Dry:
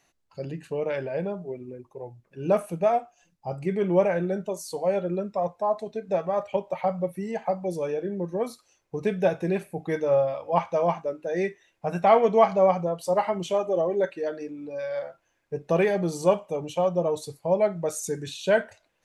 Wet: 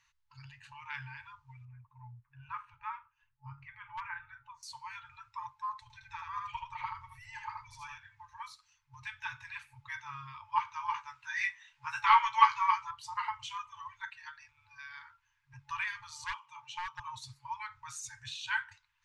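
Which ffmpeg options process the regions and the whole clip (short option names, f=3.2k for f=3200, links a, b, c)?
-filter_complex "[0:a]asettb=1/sr,asplit=3[a][b][c];[a]atrim=end=1.654[d];[b]atrim=start=1.65:end=4.63,asetpts=PTS-STARTPTS,afade=t=in:d=0.004:c=qsin,afade=t=out:st=2.976:d=0.004:c=qsin,lowpass=1.8k,equalizer=f=680:t=o:w=0.46:g=-9,asoftclip=type=hard:threshold=-15dB[e];[c]atrim=start=4.626[f];[d][e]acrossfade=d=0.004:c1=hsin:c2=qsin[g];[g][f]acrossfade=d=0.004:c1=qsin:c2=hsin,asettb=1/sr,asplit=3[h][i][j];[h]atrim=end=5.824[k];[i]atrim=start=5.82:end=7.98,asetpts=PTS-STARTPTS,afade=t=in:d=0.004:c=qsin,afade=t=out:st=2.156:d=0.004:c=qsin,lowshelf=f=140:g=11.5,aecho=1:1:78:0.668,atrim=end_sample=95256[l];[j]atrim=start=7.976[m];[k][l]acrossfade=d=0.004:c1=hsin:c2=qsin[n];[n][m]acrossfade=d=0.004:c1=qsin:c2=hsin,asettb=1/sr,asplit=3[o][p][q];[o]atrim=end=10.944[r];[p]atrim=start=10.94:end=12.91,asetpts=PTS-STARTPTS,afade=t=in:d=0.004:c=qsin,afade=t=out:st=1.966:d=0.004:c=qsin,lowshelf=f=460:g=-11,acontrast=90,asplit=2[s][t];[t]adelay=15,volume=-6dB[u];[s][u]amix=inputs=2:normalize=0,atrim=end_sample=86877[v];[q]atrim=start=12.906[w];[r][v]acrossfade=d=0.004:c1=hsin:c2=qsin[x];[x][w]acrossfade=d=0.004:c1=qsin:c2=hsin,asettb=1/sr,asplit=3[y][z][aa];[y]atrim=end=16.244[ab];[z]atrim=start=16.24:end=17,asetpts=PTS-STARTPTS,afade=t=in:d=0.004:c=qsin,afade=t=out:st=0.756:d=0.004:c=qsin,highpass=280,lowpass=7.2k,asoftclip=type=hard:threshold=-20dB[ac];[aa]atrim=start=16.996[ad];[ab][ac]acrossfade=d=0.004:c1=hsin:c2=qsin[ae];[ae][ad]acrossfade=d=0.004:c1=qsin:c2=hsin,lowpass=5.4k,afftfilt=real='re*(1-between(b*sr/4096,130,860))':imag='im*(1-between(b*sr/4096,130,860))':win_size=4096:overlap=0.75,volume=-2.5dB"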